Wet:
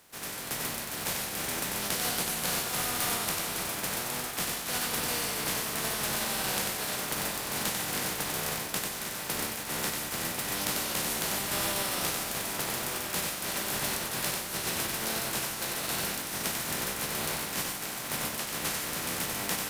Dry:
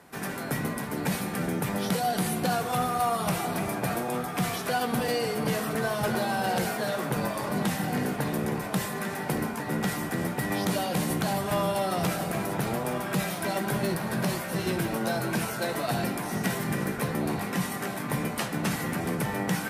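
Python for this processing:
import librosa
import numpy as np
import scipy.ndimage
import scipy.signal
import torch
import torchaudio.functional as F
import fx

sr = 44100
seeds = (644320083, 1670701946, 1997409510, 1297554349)

y = fx.spec_flatten(x, sr, power=0.31)
y = y + 10.0 ** (-4.0 / 20.0) * np.pad(y, (int(94 * sr / 1000.0), 0))[:len(y)]
y = y * 10.0 ** (-5.0 / 20.0)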